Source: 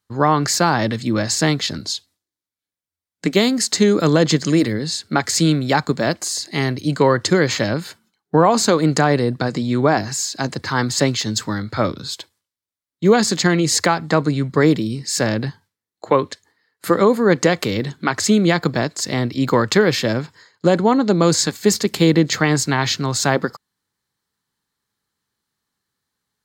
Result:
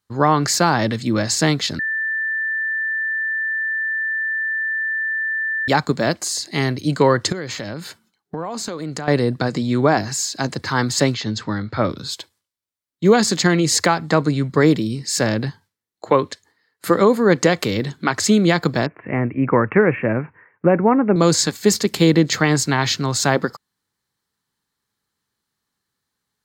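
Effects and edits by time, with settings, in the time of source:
1.79–5.68 bleep 1770 Hz -19.5 dBFS
7.32–9.08 compressor 5:1, threshold -25 dBFS
11.14–11.9 air absorption 150 m
18.86–21.16 steep low-pass 2600 Hz 96 dB/oct

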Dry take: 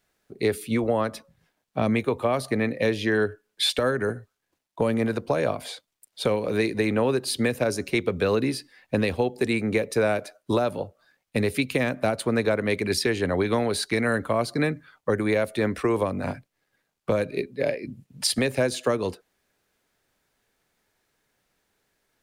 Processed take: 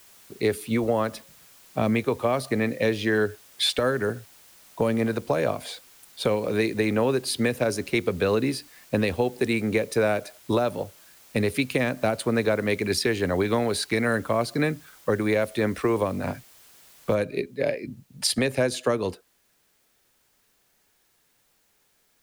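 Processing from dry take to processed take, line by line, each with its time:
17.15 noise floor step -53 dB -68 dB

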